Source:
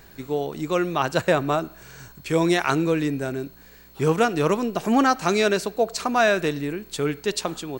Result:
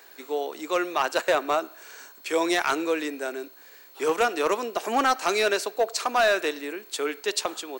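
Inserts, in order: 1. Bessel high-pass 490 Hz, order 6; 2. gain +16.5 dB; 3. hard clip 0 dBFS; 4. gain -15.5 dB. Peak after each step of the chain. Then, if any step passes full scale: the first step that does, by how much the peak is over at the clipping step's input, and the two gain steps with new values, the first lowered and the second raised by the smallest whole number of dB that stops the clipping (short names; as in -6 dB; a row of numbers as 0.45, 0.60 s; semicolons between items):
-7.5, +9.0, 0.0, -15.5 dBFS; step 2, 9.0 dB; step 2 +7.5 dB, step 4 -6.5 dB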